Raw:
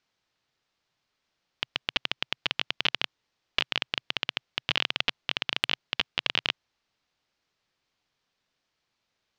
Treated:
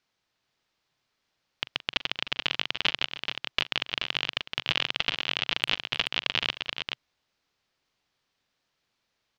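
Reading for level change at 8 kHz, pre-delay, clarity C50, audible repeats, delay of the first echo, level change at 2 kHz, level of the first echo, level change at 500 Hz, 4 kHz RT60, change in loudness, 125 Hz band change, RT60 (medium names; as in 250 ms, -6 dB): +1.5 dB, no reverb, no reverb, 3, 42 ms, +1.0 dB, -17.5 dB, +1.5 dB, no reverb, +1.0 dB, +1.0 dB, no reverb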